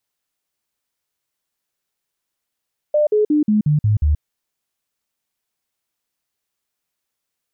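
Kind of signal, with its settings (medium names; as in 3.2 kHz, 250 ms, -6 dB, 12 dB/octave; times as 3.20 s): stepped sine 599 Hz down, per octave 2, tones 7, 0.13 s, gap 0.05 s -12 dBFS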